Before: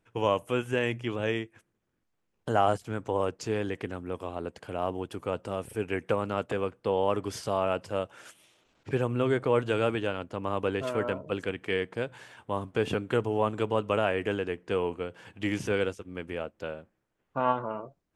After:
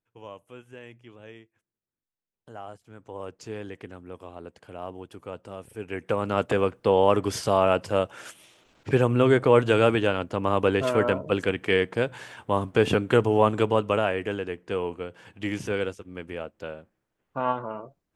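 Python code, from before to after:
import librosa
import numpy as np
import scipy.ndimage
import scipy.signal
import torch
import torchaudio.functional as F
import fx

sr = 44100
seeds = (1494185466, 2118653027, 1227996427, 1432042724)

y = fx.gain(x, sr, db=fx.line((2.75, -16.5), (3.39, -6.0), (5.73, -6.0), (6.43, 7.0), (13.55, 7.0), (14.26, 0.0)))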